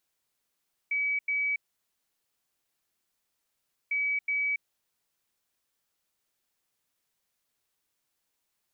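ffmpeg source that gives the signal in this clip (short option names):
-f lavfi -i "aevalsrc='0.0531*sin(2*PI*2280*t)*clip(min(mod(mod(t,3),0.37),0.28-mod(mod(t,3),0.37))/0.005,0,1)*lt(mod(t,3),0.74)':d=6:s=44100"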